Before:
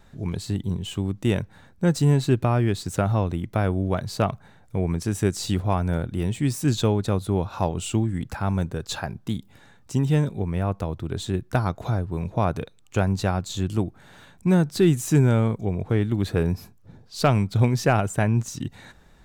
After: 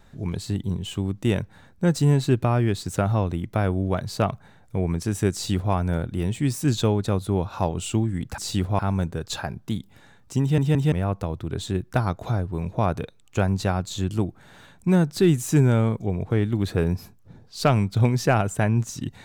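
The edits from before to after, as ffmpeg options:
ffmpeg -i in.wav -filter_complex "[0:a]asplit=6[link_01][link_02][link_03][link_04][link_05][link_06];[link_01]atrim=end=8.382[link_07];[link_02]atrim=start=5.328:end=5.742[link_08];[link_03]atrim=start=8.378:end=10.172[link_09];[link_04]atrim=start=9.998:end=10.172[link_10];[link_05]atrim=start=9.998:end=10.172[link_11];[link_06]atrim=start=10.508[link_12];[link_07][link_08]acrossfade=duration=0.004:curve1=hsin:curve2=hsin[link_13];[link_13][link_09]acrossfade=duration=0.004:curve1=hsin:curve2=hsin[link_14];[link_14][link_10]acrossfade=duration=0.004:curve1=hsin:curve2=hsin[link_15];[link_15][link_11]acrossfade=duration=0.004:curve1=hsin:curve2=hsin[link_16];[link_16][link_12]acrossfade=duration=0.004:curve1=hsin:curve2=hsin" out.wav

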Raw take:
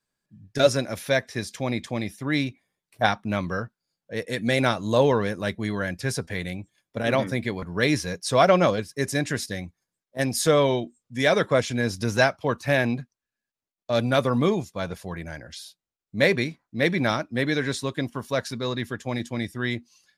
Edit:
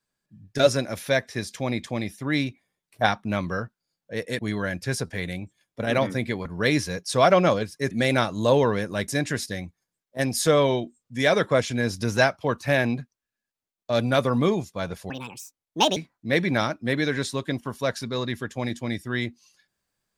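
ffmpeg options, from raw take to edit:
ffmpeg -i in.wav -filter_complex "[0:a]asplit=6[link_01][link_02][link_03][link_04][link_05][link_06];[link_01]atrim=end=4.392[link_07];[link_02]atrim=start=5.558:end=9.082[link_08];[link_03]atrim=start=4.388:end=5.562[link_09];[link_04]atrim=start=9.078:end=15.104[link_10];[link_05]atrim=start=15.1:end=16.46,asetpts=PTS-STARTPTS,asetrate=69237,aresample=44100,atrim=end_sample=38201,asetpts=PTS-STARTPTS[link_11];[link_06]atrim=start=16.456[link_12];[link_07][link_08]acrossfade=duration=0.004:curve1=hsin:curve2=hsin[link_13];[link_13][link_09]acrossfade=duration=0.004:curve1=hsin:curve2=hsin[link_14];[link_14][link_10]acrossfade=duration=0.004:curve1=hsin:curve2=hsin[link_15];[link_15][link_11]acrossfade=duration=0.004:curve1=hsin:curve2=hsin[link_16];[link_16][link_12]acrossfade=duration=0.004:curve1=hsin:curve2=hsin" out.wav

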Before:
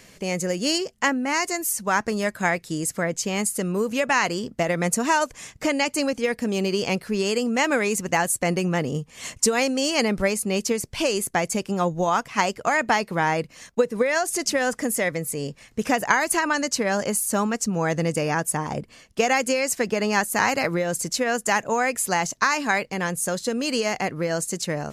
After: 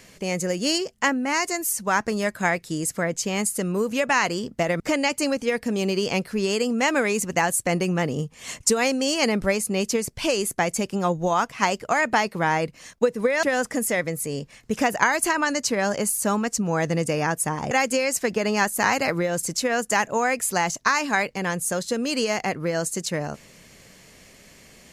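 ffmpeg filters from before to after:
ffmpeg -i in.wav -filter_complex "[0:a]asplit=4[link_01][link_02][link_03][link_04];[link_01]atrim=end=4.802[link_05];[link_02]atrim=start=5.558:end=14.192[link_06];[link_03]atrim=start=14.508:end=18.792[link_07];[link_04]atrim=start=19.268[link_08];[link_05][link_06]acrossfade=duration=0.004:curve1=hsin:curve2=hsin[link_09];[link_09][link_07]acrossfade=duration=0.004:curve1=hsin:curve2=hsin[link_10];[link_10][link_08]acrossfade=duration=0.004:curve1=hsin:curve2=hsin" out.wav

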